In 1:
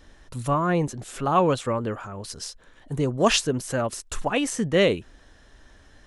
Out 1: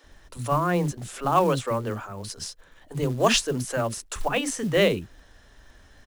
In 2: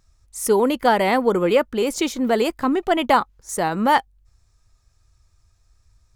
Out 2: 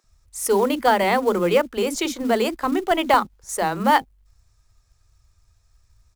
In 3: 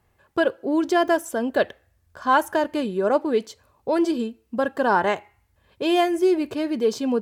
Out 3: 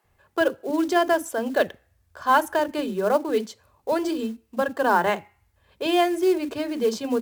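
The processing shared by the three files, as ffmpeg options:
-filter_complex "[0:a]acrossover=split=300[link_01][link_02];[link_01]adelay=40[link_03];[link_03][link_02]amix=inputs=2:normalize=0,acrusher=bits=6:mode=log:mix=0:aa=0.000001"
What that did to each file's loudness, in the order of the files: −0.5, −1.0, −1.0 LU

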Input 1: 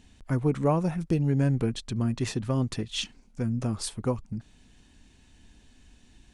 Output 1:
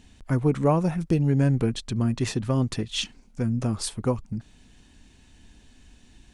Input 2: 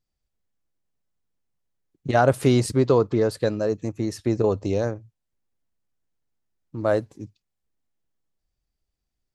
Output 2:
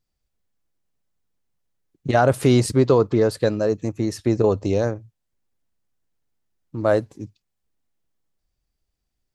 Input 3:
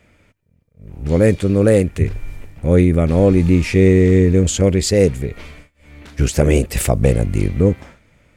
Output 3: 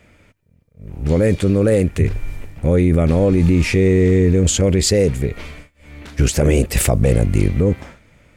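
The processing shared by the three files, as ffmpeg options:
-af "alimiter=limit=-9dB:level=0:latency=1:release=16,volume=3dB"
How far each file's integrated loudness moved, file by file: +3.0, +2.5, −1.0 LU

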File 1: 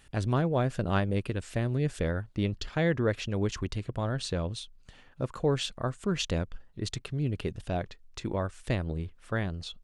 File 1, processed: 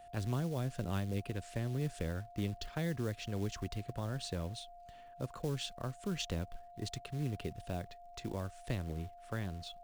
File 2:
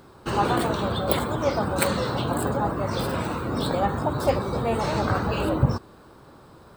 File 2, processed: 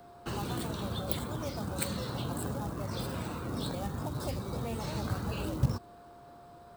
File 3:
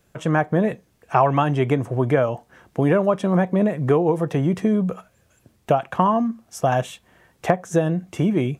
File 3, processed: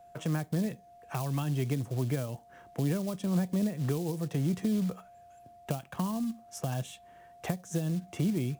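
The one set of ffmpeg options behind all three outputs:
-filter_complex "[0:a]acrusher=bits=5:mode=log:mix=0:aa=0.000001,aeval=exprs='val(0)+0.00562*sin(2*PI*700*n/s)':channel_layout=same,acrossover=split=260|3000[link_01][link_02][link_03];[link_02]acompressor=threshold=-32dB:ratio=6[link_04];[link_01][link_04][link_03]amix=inputs=3:normalize=0,volume=-7dB"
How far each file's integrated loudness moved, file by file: −8.5, −10.5, −11.5 LU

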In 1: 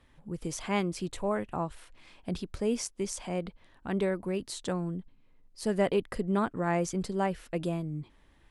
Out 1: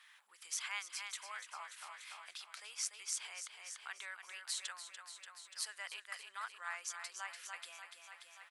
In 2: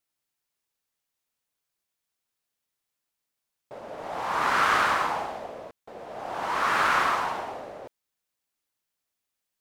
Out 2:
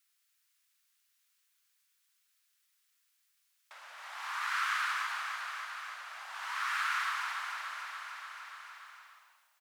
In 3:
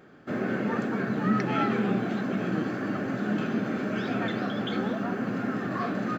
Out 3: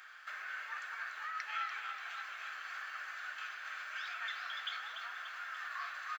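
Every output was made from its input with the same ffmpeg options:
-filter_complex "[0:a]asplit=2[link_01][link_02];[link_02]aecho=0:1:291|582|873|1164|1455|1746|2037:0.398|0.223|0.125|0.0699|0.0392|0.0219|0.0123[link_03];[link_01][link_03]amix=inputs=2:normalize=0,acompressor=threshold=-48dB:ratio=2,highpass=frequency=1300:width=0.5412,highpass=frequency=1300:width=1.3066,volume=8dB"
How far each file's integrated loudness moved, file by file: −11.5, −10.5, −13.0 LU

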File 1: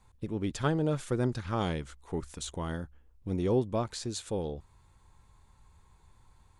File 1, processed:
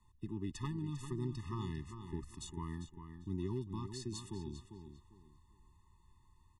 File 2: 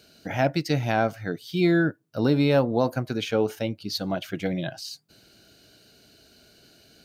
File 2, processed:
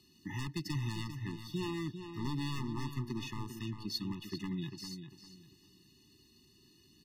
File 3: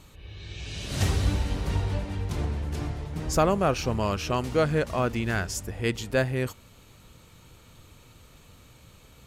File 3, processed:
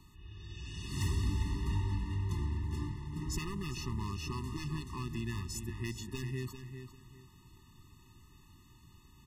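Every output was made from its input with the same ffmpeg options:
-filter_complex "[0:a]aeval=exprs='0.119*(abs(mod(val(0)/0.119+3,4)-2)-1)':channel_layout=same,acrossover=split=130|3000[link_01][link_02][link_03];[link_02]acompressor=threshold=-30dB:ratio=6[link_04];[link_01][link_04][link_03]amix=inputs=3:normalize=0,asplit=2[link_05][link_06];[link_06]adelay=398,lowpass=frequency=4600:poles=1,volume=-8.5dB,asplit=2[link_07][link_08];[link_08]adelay=398,lowpass=frequency=4600:poles=1,volume=0.27,asplit=2[link_09][link_10];[link_10]adelay=398,lowpass=frequency=4600:poles=1,volume=0.27[link_11];[link_07][link_09][link_11]amix=inputs=3:normalize=0[link_12];[link_05][link_12]amix=inputs=2:normalize=0,afftfilt=real='re*eq(mod(floor(b*sr/1024/420),2),0)':imag='im*eq(mod(floor(b*sr/1024/420),2),0)':win_size=1024:overlap=0.75,volume=-6dB"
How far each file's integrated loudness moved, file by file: −10.0, −14.5, −10.0 LU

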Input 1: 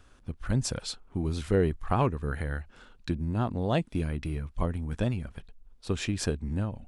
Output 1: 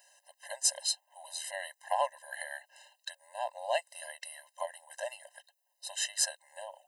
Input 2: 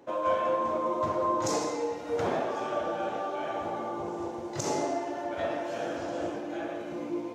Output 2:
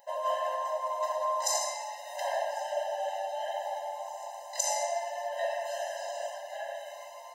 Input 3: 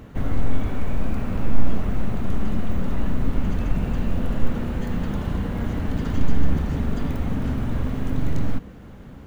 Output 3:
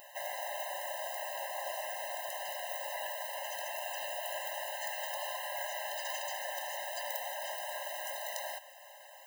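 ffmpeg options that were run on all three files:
-af "aemphasis=mode=production:type=75kf,afftfilt=real='re*eq(mod(floor(b*sr/1024/530),2),1)':imag='im*eq(mod(floor(b*sr/1024/530),2),1)':win_size=1024:overlap=0.75"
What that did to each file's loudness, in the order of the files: −4.5, −2.0, −10.5 LU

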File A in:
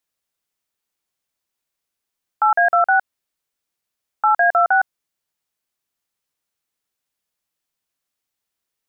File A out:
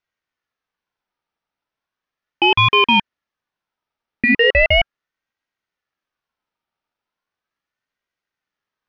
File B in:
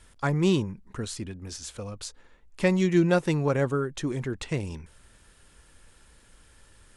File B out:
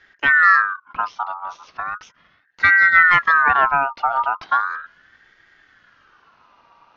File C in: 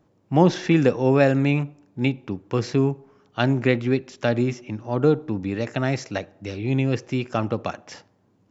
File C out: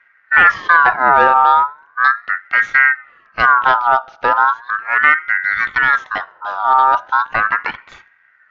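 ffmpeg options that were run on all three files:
-af "highpass=frequency=110:width=0.5412,highpass=frequency=110:width=1.3066,aemphasis=mode=reproduction:type=riaa,aresample=11025,aeval=exprs='1.26*sin(PI/2*1.78*val(0)/1.26)':channel_layout=same,aresample=44100,aeval=exprs='val(0)*sin(2*PI*1400*n/s+1400*0.25/0.37*sin(2*PI*0.37*n/s))':channel_layout=same,volume=-3.5dB"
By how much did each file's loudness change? +2.5, +12.0, +9.5 LU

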